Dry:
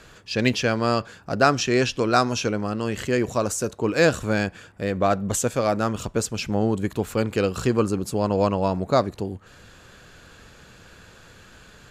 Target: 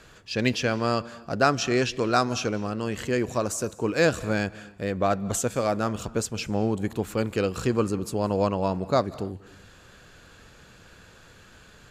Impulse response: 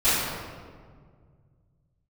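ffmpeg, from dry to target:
-filter_complex "[0:a]asplit=2[link_01][link_02];[1:a]atrim=start_sample=2205,afade=type=out:start_time=0.21:duration=0.01,atrim=end_sample=9702,adelay=148[link_03];[link_02][link_03]afir=irnorm=-1:irlink=0,volume=-35.5dB[link_04];[link_01][link_04]amix=inputs=2:normalize=0,volume=-3dB"

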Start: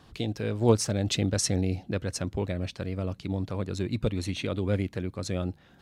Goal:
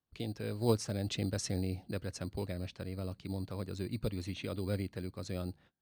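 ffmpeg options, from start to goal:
ffmpeg -i in.wav -filter_complex "[0:a]highshelf=frequency=6700:gain=-8,acrossover=split=600|2000[link_01][link_02][link_03];[link_01]acrusher=samples=10:mix=1:aa=0.000001[link_04];[link_04][link_02][link_03]amix=inputs=3:normalize=0,agate=range=-28dB:threshold=-50dB:ratio=16:detection=peak,volume=-8dB" out.wav

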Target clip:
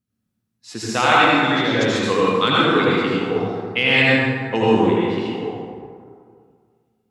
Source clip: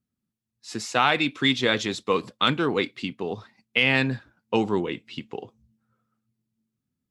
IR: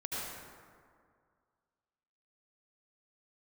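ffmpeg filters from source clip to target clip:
-filter_complex "[0:a]asettb=1/sr,asplit=3[link_01][link_02][link_03];[link_01]atrim=end=1.244[link_04];[link_02]atrim=start=1.24:end=1.81,asetpts=PTS-STARTPTS,afade=type=in:duration=0.004:curve=qsin,afade=type=out:start_time=0.566:duration=0.004:curve=qsin,acrossover=split=660|5100[link_05][link_06][link_07];[link_05]acompressor=threshold=-24dB:ratio=4[link_08];[link_06]acompressor=threshold=-28dB:ratio=4[link_09];[link_07]acompressor=threshold=-52dB:ratio=4[link_10];[link_08][link_09][link_10]amix=inputs=3:normalize=0[link_11];[link_03]atrim=start=1.806[link_12];[link_04][link_11]acrossfade=duration=0.004:curve1=hsin:curve2=qsin[link_13];[link_13][link_12]acrossfade=duration=0.004:curve1=qsin:curve2=hsin[link_14];[1:a]atrim=start_sample=2205[link_15];[link_14][link_15]afir=irnorm=-1:irlink=0,volume=4.5dB"

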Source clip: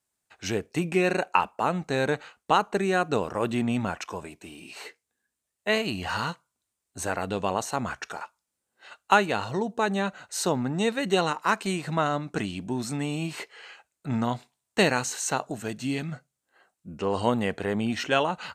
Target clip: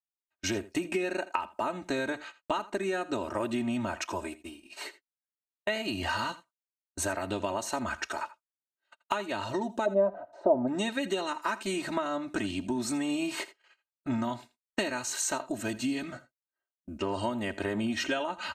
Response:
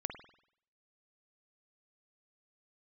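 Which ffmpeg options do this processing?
-filter_complex "[0:a]agate=range=-34dB:threshold=-42dB:ratio=16:detection=peak,aecho=1:1:3.2:0.92,acompressor=threshold=-27dB:ratio=12,asplit=3[link_01][link_02][link_03];[link_01]afade=type=out:start_time=9.85:duration=0.02[link_04];[link_02]lowpass=frequency=660:width_type=q:width=6.1,afade=type=in:start_time=9.85:duration=0.02,afade=type=out:start_time=10.67:duration=0.02[link_05];[link_03]afade=type=in:start_time=10.67:duration=0.02[link_06];[link_04][link_05][link_06]amix=inputs=3:normalize=0,aecho=1:1:82:0.133"

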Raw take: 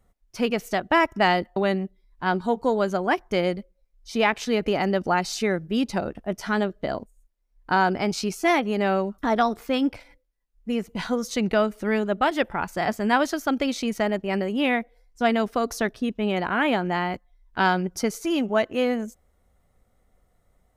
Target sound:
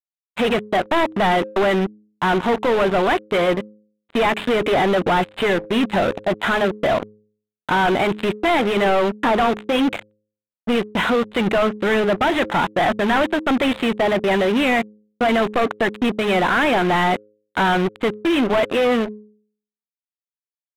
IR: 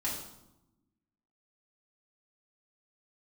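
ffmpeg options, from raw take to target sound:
-filter_complex "[0:a]asplit=2[link_01][link_02];[link_02]highpass=frequency=720:poles=1,volume=34dB,asoftclip=type=tanh:threshold=-6.5dB[link_03];[link_01][link_03]amix=inputs=2:normalize=0,lowpass=frequency=2800:poles=1,volume=-6dB,aresample=8000,acrusher=bits=2:mix=0:aa=0.5,aresample=44100,bandreject=frequency=105.7:width_type=h:width=4,bandreject=frequency=211.4:width_type=h:width=4,bandreject=frequency=317.1:width_type=h:width=4,bandreject=frequency=422.8:width_type=h:width=4,bandreject=frequency=528.5:width_type=h:width=4,adynamicsmooth=sensitivity=6:basefreq=2500,volume=-5dB"

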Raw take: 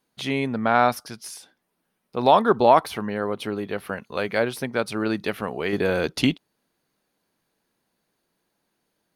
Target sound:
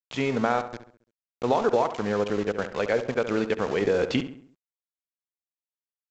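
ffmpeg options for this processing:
ffmpeg -i in.wav -filter_complex "[0:a]lowpass=3500,adynamicequalizer=threshold=0.0126:dfrequency=470:dqfactor=5.1:tfrequency=470:tqfactor=5.1:attack=5:release=100:ratio=0.375:range=4:mode=boostabove:tftype=bell,acompressor=threshold=-20dB:ratio=4,aeval=exprs='val(0)*gte(abs(val(0)),0.0251)':channel_layout=same,atempo=1.5,asplit=2[link_01][link_02];[link_02]adelay=68,lowpass=frequency=2500:poles=1,volume=-10.5dB,asplit=2[link_03][link_04];[link_04]adelay=68,lowpass=frequency=2500:poles=1,volume=0.47,asplit=2[link_05][link_06];[link_06]adelay=68,lowpass=frequency=2500:poles=1,volume=0.47,asplit=2[link_07][link_08];[link_08]adelay=68,lowpass=frequency=2500:poles=1,volume=0.47,asplit=2[link_09][link_10];[link_10]adelay=68,lowpass=frequency=2500:poles=1,volume=0.47[link_11];[link_03][link_05][link_07][link_09][link_11]amix=inputs=5:normalize=0[link_12];[link_01][link_12]amix=inputs=2:normalize=0" -ar 16000 -c:a pcm_mulaw out.wav

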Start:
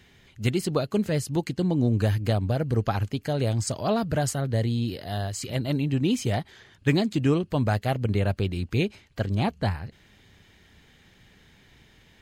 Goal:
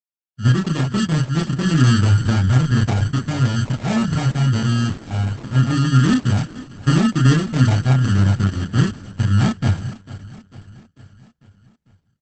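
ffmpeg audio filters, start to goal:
ffmpeg -i in.wav -filter_complex "[0:a]aemphasis=mode=reproduction:type=50kf,bandreject=frequency=1700:width=16,agate=range=-58dB:threshold=-49dB:ratio=16:detection=peak,equalizer=frequency=125:width_type=o:width=1:gain=11,equalizer=frequency=250:width_type=o:width=1:gain=7,equalizer=frequency=500:width_type=o:width=1:gain=-10,equalizer=frequency=1000:width_type=o:width=1:gain=5,equalizer=frequency=2000:width_type=o:width=1:gain=-7,equalizer=frequency=4000:width_type=o:width=1:gain=9,equalizer=frequency=8000:width_type=o:width=1:gain=-5,acrusher=samples=29:mix=1:aa=0.000001,asplit=2[link_01][link_02];[link_02]adelay=31,volume=-2dB[link_03];[link_01][link_03]amix=inputs=2:normalize=0,aecho=1:1:447|894|1341|1788|2235:0.141|0.0805|0.0459|0.0262|0.0149,volume=-1dB" -ar 48000 -c:a libopus -b:a 10k out.opus

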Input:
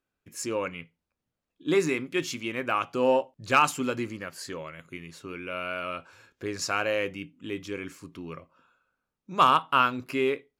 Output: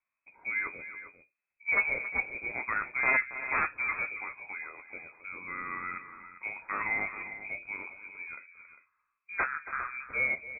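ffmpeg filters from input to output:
ffmpeg -i in.wav -filter_complex "[0:a]asplit=3[link_01][link_02][link_03];[link_01]afade=type=out:start_time=9.42:duration=0.02[link_04];[link_02]acompressor=threshold=-27dB:ratio=8,afade=type=in:start_time=9.42:duration=0.02,afade=type=out:start_time=10.01:duration=0.02[link_05];[link_03]afade=type=in:start_time=10.01:duration=0.02[link_06];[link_04][link_05][link_06]amix=inputs=3:normalize=0,aeval=exprs='(mod(5.31*val(0)+1,2)-1)/5.31':channel_layout=same,flanger=delay=7.6:depth=8.3:regen=-36:speed=0.8:shape=triangular,aecho=1:1:276|401:0.2|0.224,lowpass=frequency=2200:width_type=q:width=0.5098,lowpass=frequency=2200:width_type=q:width=0.6013,lowpass=frequency=2200:width_type=q:width=0.9,lowpass=frequency=2200:width_type=q:width=2.563,afreqshift=-2600" out.wav

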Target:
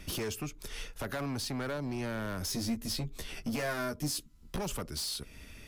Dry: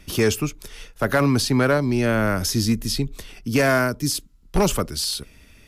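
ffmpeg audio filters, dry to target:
ffmpeg -i in.wav -filter_complex "[0:a]acompressor=threshold=-35dB:ratio=3,asoftclip=type=hard:threshold=-31.5dB,asettb=1/sr,asplit=3[link_01][link_02][link_03];[link_01]atrim=end=2.494[link_04];[link_02]atrim=start=2.49:end=4.58,asetpts=PTS-STARTPTS,afade=type=in:duration=0.004:curve=qsin,afade=type=out:start_time=2.086:duration=0.004:curve=qsin,asplit=2[link_05][link_06];[link_06]adelay=13,volume=-3dB[link_07];[link_05][link_07]amix=inputs=2:normalize=0,atrim=end_sample=92169[link_08];[link_03]atrim=start=4.576[link_09];[link_04][link_08]acrossfade=duration=0.004:curve1=hsin:curve2=qsin[link_10];[link_10][link_09]acrossfade=duration=0.004:curve1=qsin:curve2=hsin" out.wav

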